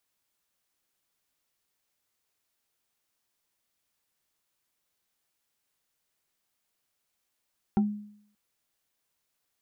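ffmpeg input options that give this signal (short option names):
-f lavfi -i "aevalsrc='0.126*pow(10,-3*t/0.65)*sin(2*PI*208*t+0.7*pow(10,-3*t/0.15)*sin(2*PI*2.77*208*t))':d=0.58:s=44100"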